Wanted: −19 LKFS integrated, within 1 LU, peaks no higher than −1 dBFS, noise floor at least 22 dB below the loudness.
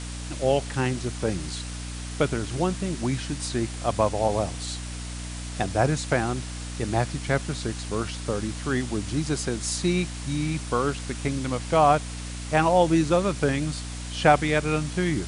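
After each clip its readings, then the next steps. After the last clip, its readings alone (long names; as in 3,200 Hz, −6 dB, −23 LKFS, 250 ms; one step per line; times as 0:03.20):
mains hum 60 Hz; hum harmonics up to 300 Hz; level of the hum −33 dBFS; background noise floor −35 dBFS; target noise floor −48 dBFS; integrated loudness −26.0 LKFS; sample peak −4.0 dBFS; target loudness −19.0 LKFS
→ hum removal 60 Hz, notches 5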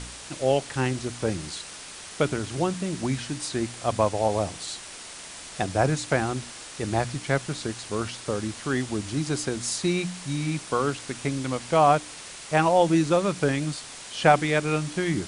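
mains hum none found; background noise floor −42 dBFS; target noise floor −48 dBFS
→ broadband denoise 6 dB, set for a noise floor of −42 dBFS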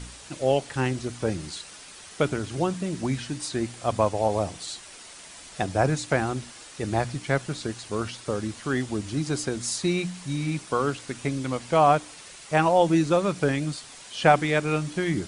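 background noise floor −45 dBFS; target noise floor −48 dBFS
→ broadband denoise 6 dB, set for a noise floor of −45 dBFS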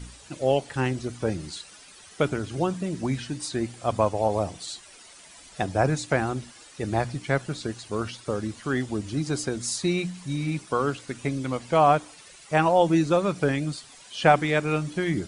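background noise floor −49 dBFS; integrated loudness −26.0 LKFS; sample peak −4.0 dBFS; target loudness −19.0 LKFS
→ level +7 dB
brickwall limiter −1 dBFS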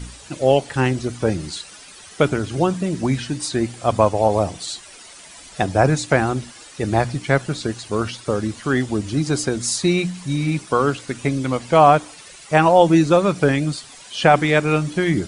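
integrated loudness −19.5 LKFS; sample peak −1.0 dBFS; background noise floor −42 dBFS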